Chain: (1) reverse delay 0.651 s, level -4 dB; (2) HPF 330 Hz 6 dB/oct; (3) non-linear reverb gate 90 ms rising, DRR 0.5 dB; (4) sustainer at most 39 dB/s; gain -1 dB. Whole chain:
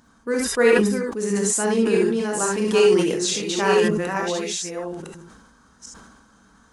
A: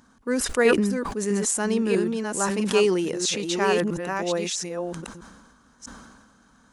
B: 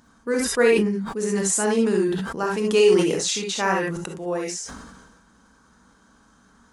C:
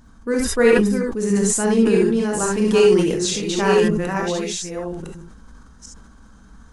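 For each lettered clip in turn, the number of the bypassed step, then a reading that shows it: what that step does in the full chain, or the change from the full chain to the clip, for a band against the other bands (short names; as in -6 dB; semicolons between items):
3, crest factor change +2.0 dB; 1, momentary loudness spread change +1 LU; 2, 125 Hz band +4.5 dB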